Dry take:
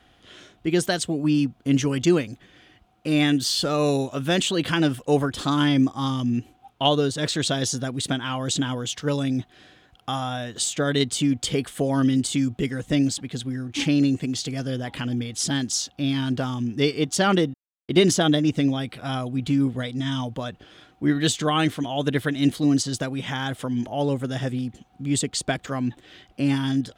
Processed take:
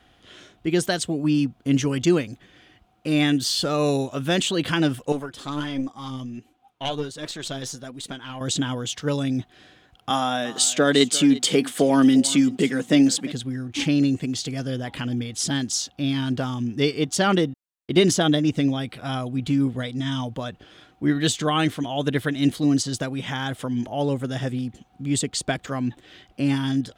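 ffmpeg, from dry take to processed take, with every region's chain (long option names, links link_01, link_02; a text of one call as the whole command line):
ffmpeg -i in.wav -filter_complex "[0:a]asettb=1/sr,asplit=3[link_01][link_02][link_03];[link_01]atrim=end=5.124[link_04];[link_02]atrim=start=5.12:end=8.41,asetpts=PTS-STARTPTS,afade=type=in:duration=0.004:curve=qsin,afade=type=out:start_time=3.286:duration=0.004:curve=qsin,lowshelf=frequency=150:gain=-7,flanger=delay=2.9:depth=5.4:regen=51:speed=1.4:shape=triangular,aeval=exprs='(tanh(5.01*val(0)+0.6)-tanh(0.6))/5.01':channel_layout=same[link_05];[link_03]atrim=start=8.406[link_06];[link_04][link_05]acrossfade=duration=0.004:curve1=hsin:curve2=qsin[link_07];[link_07][link_06]acrossfade=duration=0.004:curve1=qsin:curve2=hsin,asettb=1/sr,asplit=3[link_08][link_09][link_10];[link_08]atrim=end=10.104[link_11];[link_09]atrim=start=10.1:end=13.32,asetpts=PTS-STARTPTS,afade=type=in:duration=0.004:curve=qsin,afade=type=out:start_time=3.216:duration=0.004:curve=qsin,highpass=frequency=180:width=0.5412,highpass=frequency=180:width=1.3066,acontrast=40,aecho=1:1:348:0.126,atrim=end_sample=142002[link_12];[link_10]atrim=start=13.316[link_13];[link_11][link_12]acrossfade=duration=0.004:curve1=hsin:curve2=qsin[link_14];[link_14][link_13]acrossfade=duration=0.004:curve1=qsin:curve2=hsin" out.wav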